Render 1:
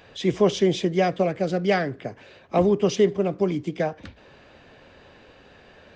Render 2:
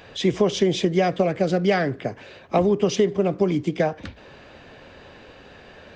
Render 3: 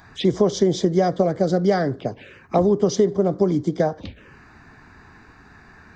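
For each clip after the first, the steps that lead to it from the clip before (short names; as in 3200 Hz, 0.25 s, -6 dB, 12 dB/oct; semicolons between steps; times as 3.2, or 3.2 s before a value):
compressor, threshold -20 dBFS, peak gain reduction 7 dB; gain +5 dB
envelope phaser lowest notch 460 Hz, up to 2600 Hz, full sweep at -22 dBFS; gain +2 dB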